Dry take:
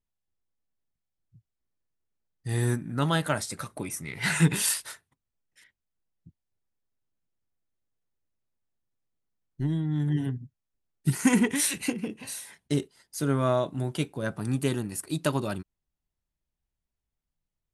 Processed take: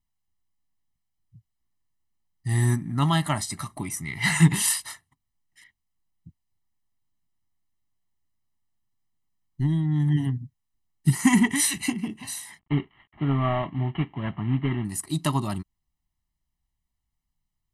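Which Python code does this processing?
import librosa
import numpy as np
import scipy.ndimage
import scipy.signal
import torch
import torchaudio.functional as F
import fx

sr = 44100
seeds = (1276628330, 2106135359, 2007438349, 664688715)

y = fx.cvsd(x, sr, bps=16000, at=(12.59, 14.85))
y = y + 0.98 * np.pad(y, (int(1.0 * sr / 1000.0), 0))[:len(y)]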